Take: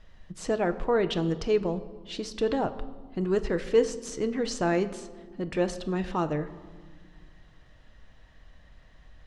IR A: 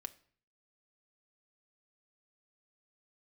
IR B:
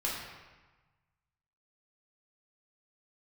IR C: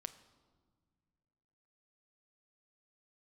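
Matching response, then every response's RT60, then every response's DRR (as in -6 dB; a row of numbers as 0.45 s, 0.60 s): C; 0.50 s, 1.2 s, no single decay rate; 8.0 dB, -5.0 dB, 9.0 dB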